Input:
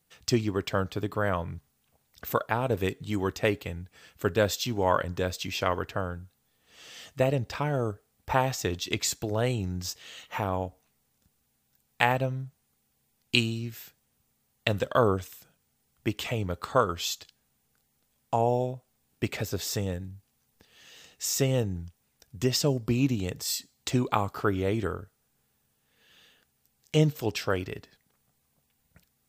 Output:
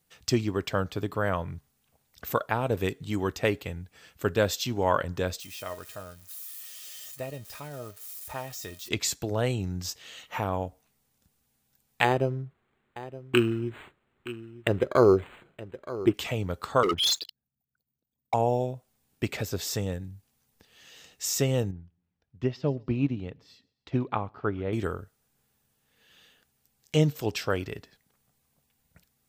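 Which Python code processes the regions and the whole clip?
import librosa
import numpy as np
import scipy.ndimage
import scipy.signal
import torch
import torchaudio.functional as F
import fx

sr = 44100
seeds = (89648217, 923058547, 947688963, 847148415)

y = fx.chain(x, sr, fx.crossing_spikes(level_db=-25.5),
    fx.comb_fb(f0_hz=620.0, decay_s=0.17, harmonics='all', damping=0.0, mix_pct=80), at=(5.4, 8.89))
y = fx.chain(y, sr, fx.peak_eq(hz=370.0, db=13.0, octaves=0.41),
    fx.echo_single(ms=920, db=-15.5),
    fx.resample_linear(factor=8), at=(12.04, 16.14))
y = fx.chain(y, sr, fx.envelope_sharpen(power=3.0),
    fx.highpass(hz=270.0, slope=6),
    fx.leveller(passes=3), at=(16.83, 18.34))
y = fx.chain(y, sr, fx.air_absorb(metres=300.0),
    fx.echo_feedback(ms=133, feedback_pct=47, wet_db=-24.0),
    fx.upward_expand(threshold_db=-45.0, expansion=1.5), at=(21.71, 24.73))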